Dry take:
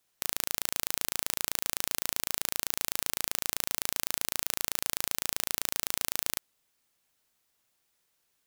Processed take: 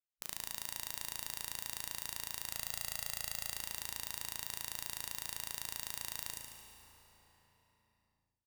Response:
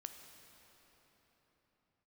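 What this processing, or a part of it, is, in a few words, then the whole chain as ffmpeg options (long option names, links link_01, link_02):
cathedral: -filter_complex "[0:a]afwtdn=0.00794,asettb=1/sr,asplit=3[link_01][link_02][link_03];[link_01]atrim=end=2.524[link_04];[link_02]atrim=start=2.52:end=3.5,asetpts=PTS-STARTPTS,afade=type=in:duration=0.004:curve=qsin,afade=type=out:start_time=0.976:duration=0.004:curve=qsin,aecho=1:1:1.5:0.71,atrim=end_sample=43218[link_05];[link_03]atrim=start=3.496[link_06];[link_04][link_05]acrossfade=duration=0.004:curve1=hsin:curve2=qsin[link_07];[link_07][link_06]acrossfade=duration=0.004:curve1=qsin:curve2=hsin[link_08];[1:a]atrim=start_sample=2205[link_09];[link_08][link_09]afir=irnorm=-1:irlink=0,aecho=1:1:73|146|219|292|365|438|511:0.531|0.287|0.155|0.0836|0.0451|0.0244|0.0132,volume=-6dB"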